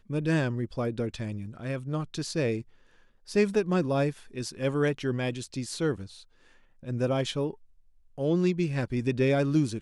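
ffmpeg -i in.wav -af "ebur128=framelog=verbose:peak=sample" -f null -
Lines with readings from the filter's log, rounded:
Integrated loudness:
  I:         -29.1 LUFS
  Threshold: -39.7 LUFS
Loudness range:
  LRA:         3.1 LU
  Threshold: -50.4 LUFS
  LRA low:   -32.2 LUFS
  LRA high:  -29.0 LUFS
Sample peak:
  Peak:      -12.3 dBFS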